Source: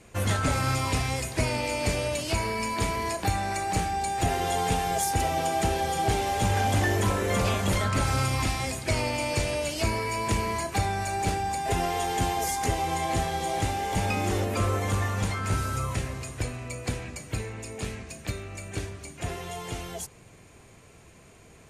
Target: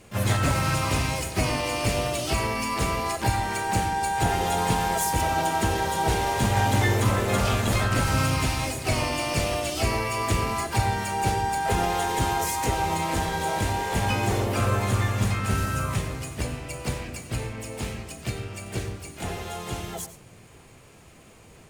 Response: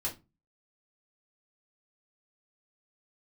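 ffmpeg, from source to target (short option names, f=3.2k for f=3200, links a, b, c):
-filter_complex "[0:a]asplit=3[a][b][c];[b]asetrate=52444,aresample=44100,atempo=0.840896,volume=-4dB[d];[c]asetrate=88200,aresample=44100,atempo=0.5,volume=-10dB[e];[a][d][e]amix=inputs=3:normalize=0,asplit=2[f][g];[1:a]atrim=start_sample=2205,adelay=90[h];[g][h]afir=irnorm=-1:irlink=0,volume=-15.5dB[i];[f][i]amix=inputs=2:normalize=0"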